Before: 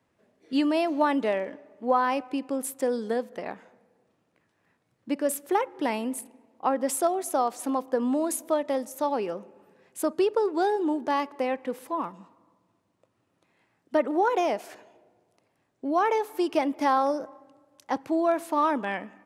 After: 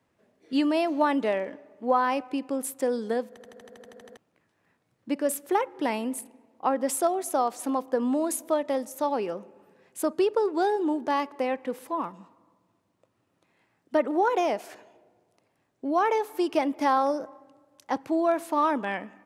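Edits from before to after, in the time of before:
3.29 s: stutter in place 0.08 s, 11 plays

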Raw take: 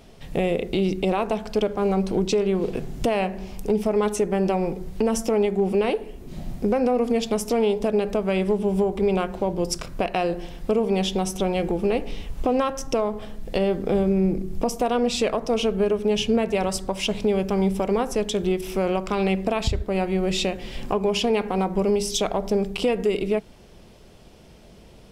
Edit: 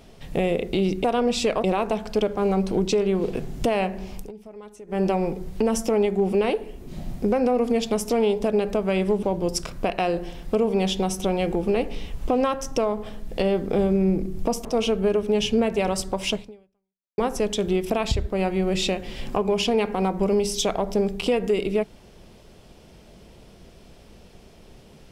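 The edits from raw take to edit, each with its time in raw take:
3.58–4.40 s: dip -20 dB, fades 0.13 s
8.63–9.39 s: delete
14.81–15.41 s: move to 1.04 s
17.09–17.94 s: fade out exponential
18.66–19.46 s: delete

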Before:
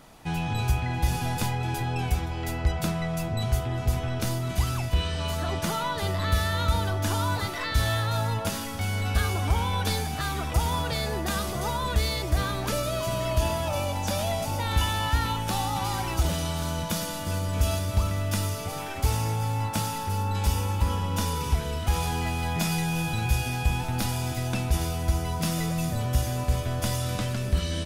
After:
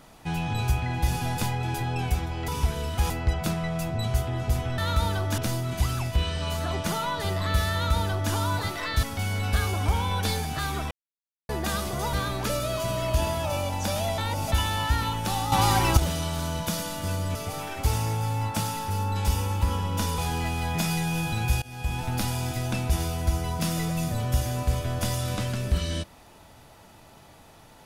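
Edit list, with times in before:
6.50–7.10 s: copy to 4.16 s
7.81–8.65 s: delete
10.53–11.11 s: mute
11.75–12.36 s: delete
14.41–14.75 s: reverse
15.75–16.20 s: gain +7.5 dB
17.58–18.54 s: delete
21.37–21.99 s: move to 2.48 s
23.43–23.88 s: fade in, from -21 dB

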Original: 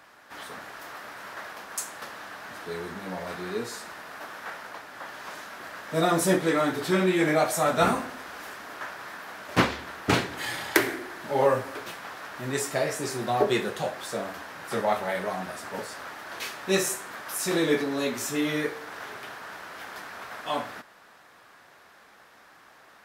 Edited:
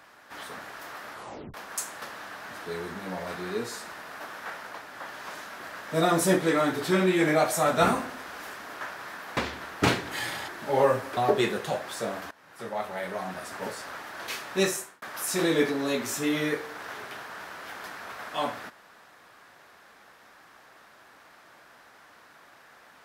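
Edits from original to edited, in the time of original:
1.11 s: tape stop 0.43 s
9.37–9.63 s: delete
10.74–11.10 s: delete
11.79–13.29 s: delete
14.43–15.70 s: fade in, from -19 dB
16.72–17.14 s: fade out

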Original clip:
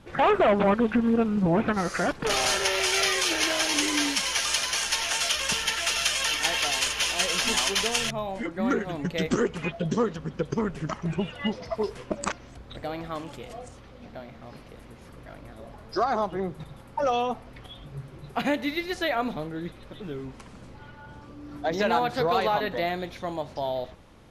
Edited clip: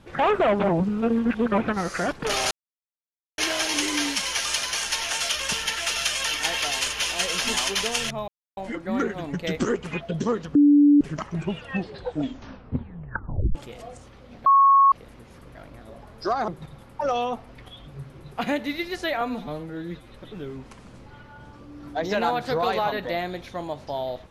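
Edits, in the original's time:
0.68–1.58 s: reverse
2.51–3.38 s: mute
8.28 s: insert silence 0.29 s
10.26–10.72 s: bleep 290 Hz -11.5 dBFS
11.30 s: tape stop 1.96 s
14.17–14.63 s: bleep 1.1 kHz -12 dBFS
16.19–16.46 s: delete
19.19–19.78 s: stretch 1.5×

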